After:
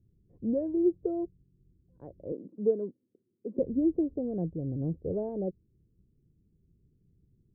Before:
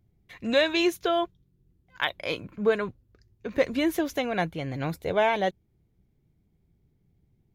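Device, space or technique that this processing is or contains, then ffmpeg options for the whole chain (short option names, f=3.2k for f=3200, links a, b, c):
under water: -filter_complex "[0:a]asettb=1/sr,asplit=3[a][b][c];[a]atrim=end=2.324[d];[b]atrim=start=2.32:end=3.59,asetpts=PTS-STARTPTS,afade=t=in:d=0.004:c=qsin,afade=t=out:st=1.266:d=0.004:c=qsin,highpass=f=220:w=0.5412,highpass=f=220:w=1.3066[e];[c]atrim=start=3.586[f];[d][e]acrossfade=d=0.004:c1=hsin:c2=qsin[g];[g][f]acrossfade=d=0.004:c1=qsin:c2=hsin,lowpass=f=400:w=0.5412,lowpass=f=400:w=1.3066,equalizer=f=510:t=o:w=0.54:g=4"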